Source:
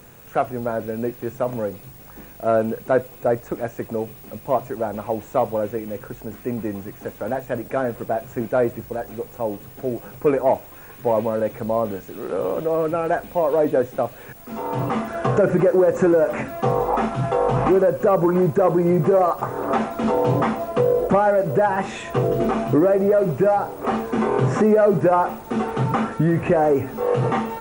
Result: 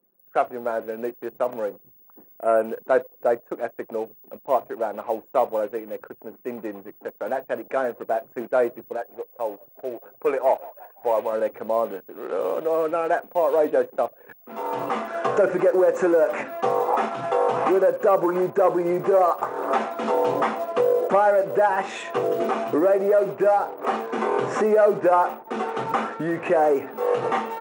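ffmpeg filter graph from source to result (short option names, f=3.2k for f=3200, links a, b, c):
-filter_complex "[0:a]asettb=1/sr,asplit=3[a][b][c];[a]atrim=end=1.774[d];[b]atrim=start=1.77:end=2.66,asetpts=PTS-STARTPTS,afade=t=in:d=0.004:c=qsin,afade=t=out:st=0.886:d=0.004:c=qsin,asuperstop=centerf=4800:order=4:qfactor=0.91,equalizer=f=9k:w=2:g=7.5[e];[c]atrim=start=2.656[f];[d][e]acrossfade=d=0.004:c1=hsin:c2=qsin[g];[g][f]acrossfade=d=0.004:c1=qsin:c2=hsin,asettb=1/sr,asplit=3[h][i][j];[h]atrim=end=8.974[k];[i]atrim=start=8.97:end=11.33,asetpts=PTS-STARTPTS,afade=t=in:d=0.004:c=qsin,afade=t=out:st=2.356:d=0.004:c=qsin,equalizer=f=210:w=0.94:g=-7.5,asplit=6[l][m][n][o][p][q];[m]adelay=171,afreqshift=39,volume=-20.5dB[r];[n]adelay=342,afreqshift=78,volume=-24.5dB[s];[o]adelay=513,afreqshift=117,volume=-28.5dB[t];[p]adelay=684,afreqshift=156,volume=-32.5dB[u];[q]adelay=855,afreqshift=195,volume=-36.6dB[v];[l][r][s][t][u][v]amix=inputs=6:normalize=0,atrim=end_sample=104076[w];[j]atrim=start=11.326[x];[k][w]acrossfade=d=0.004:c1=hsin:c2=qsin[y];[y][x]acrossfade=d=0.004:c1=qsin:c2=hsin,anlmdn=2.51,highpass=390"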